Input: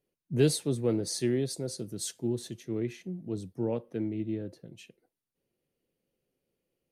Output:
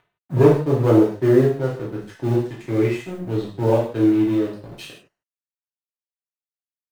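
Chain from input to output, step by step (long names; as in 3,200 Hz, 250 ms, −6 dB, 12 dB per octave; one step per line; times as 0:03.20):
parametric band 900 Hz +12.5 dB 3 octaves
harmonic and percussive parts rebalanced harmonic +6 dB
high-shelf EQ 7,000 Hz +9.5 dB
in parallel at +2 dB: upward compression, threshold −20 dBFS
on the sum: low-pass filter sweep 960 Hz → 4,400 Hz, 0:00.82–0:03.83
log-companded quantiser 8 bits
dead-zone distortion −29 dBFS
reverb whose tail is shaped and stops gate 190 ms falling, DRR −5 dB
level −11 dB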